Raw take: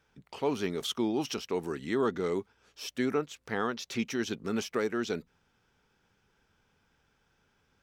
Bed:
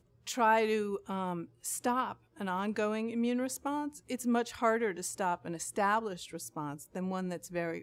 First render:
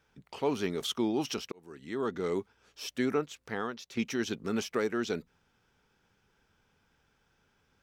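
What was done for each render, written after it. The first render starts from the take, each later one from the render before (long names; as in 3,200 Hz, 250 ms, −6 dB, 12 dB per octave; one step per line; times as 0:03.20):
0:01.52–0:02.37: fade in
0:03.26–0:03.97: fade out, to −10 dB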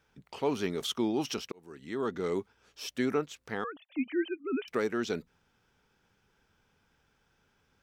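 0:03.64–0:04.68: three sine waves on the formant tracks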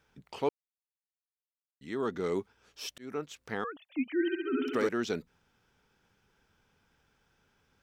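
0:00.49–0:01.81: silence
0:02.98–0:03.38: fade in
0:04.13–0:04.89: flutter between parallel walls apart 11.6 metres, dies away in 1.2 s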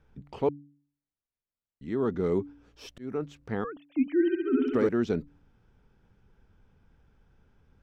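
spectral tilt −3.5 dB per octave
hum removal 143.7 Hz, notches 2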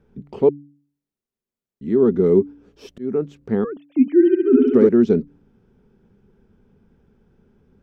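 hollow resonant body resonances 220/380 Hz, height 14 dB, ringing for 30 ms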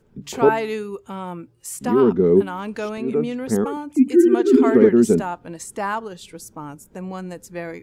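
mix in bed +4.5 dB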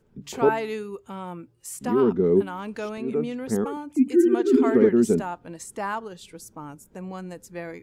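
level −4.5 dB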